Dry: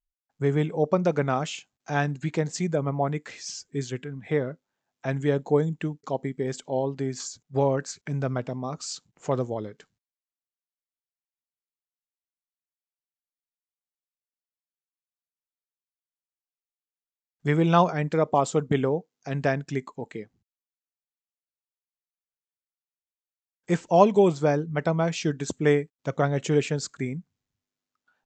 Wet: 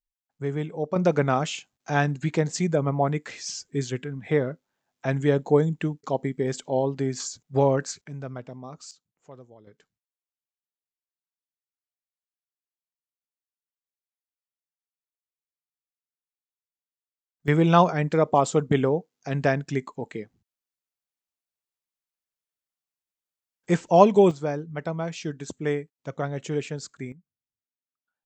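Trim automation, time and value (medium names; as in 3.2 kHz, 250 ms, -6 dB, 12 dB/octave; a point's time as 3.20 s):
-5 dB
from 0.96 s +2.5 dB
from 8.04 s -8 dB
from 8.91 s -20 dB
from 9.67 s -10 dB
from 17.48 s +2 dB
from 24.31 s -5.5 dB
from 27.12 s -18 dB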